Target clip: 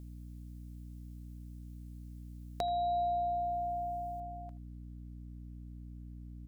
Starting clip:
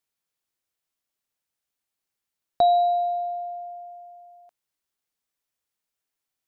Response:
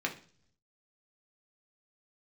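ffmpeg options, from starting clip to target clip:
-filter_complex "[0:a]asetnsamples=n=441:p=0,asendcmd='4.2 highshelf g -4',highshelf=f=3.4k:g=10,acompressor=threshold=-39dB:ratio=3,alimiter=limit=-22.5dB:level=0:latency=1:release=390,aeval=exprs='val(0)+0.00355*(sin(2*PI*60*n/s)+sin(2*PI*2*60*n/s)/2+sin(2*PI*3*60*n/s)/3+sin(2*PI*4*60*n/s)/4+sin(2*PI*5*60*n/s)/5)':c=same,asplit=2[a][b];[b]adelay=80,highpass=300,lowpass=3.4k,asoftclip=type=hard:threshold=-33dB,volume=-19dB[c];[a][c]amix=inputs=2:normalize=0,volume=3.5dB"

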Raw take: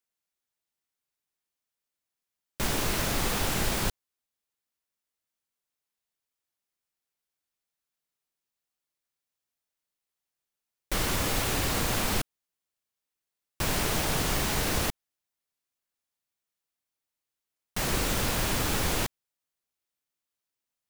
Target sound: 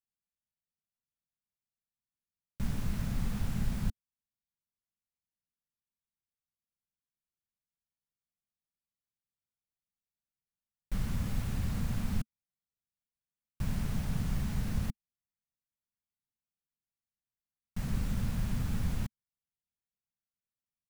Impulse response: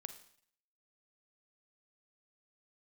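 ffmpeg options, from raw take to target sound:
-af "firequalizer=gain_entry='entry(220,0);entry(310,-18);entry(1600,-16);entry(3100,-19)':delay=0.05:min_phase=1"

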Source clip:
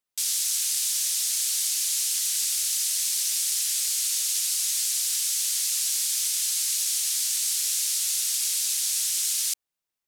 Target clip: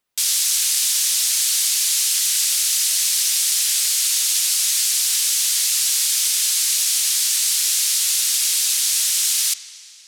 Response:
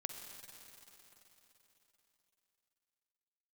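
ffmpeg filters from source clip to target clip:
-filter_complex "[0:a]acontrast=90,asplit=2[a][b];[1:a]atrim=start_sample=2205,asetrate=57330,aresample=44100,lowpass=5.2k[c];[b][c]afir=irnorm=-1:irlink=0,volume=-1.5dB[d];[a][d]amix=inputs=2:normalize=0"

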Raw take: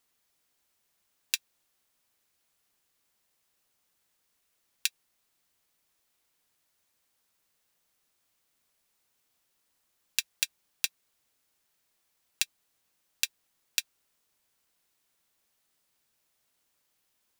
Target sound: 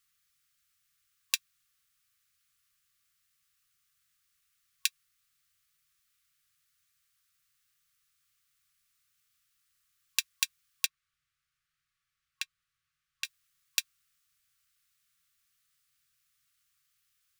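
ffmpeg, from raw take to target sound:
-filter_complex "[0:a]asettb=1/sr,asplit=3[a][b][c];[a]atrim=end=10.864[d];[b]atrim=start=10.86:end=13.25,asetpts=PTS-STARTPTS,afade=t=in:d=0.004:c=qsin,afade=t=out:st=2.386:d=0.004:c=qsin,lowpass=f=1.9k:p=1[e];[c]atrim=start=13.246[f];[d][e]acrossfade=d=0.004:c1=hsin:c2=qsin[g];[g][f]acrossfade=d=0.004:c1=qsin:c2=hsin,afftfilt=real='re*(1-between(b*sr/4096,170,1100))':imag='im*(1-between(b*sr/4096,170,1100))':win_size=4096:overlap=0.75"

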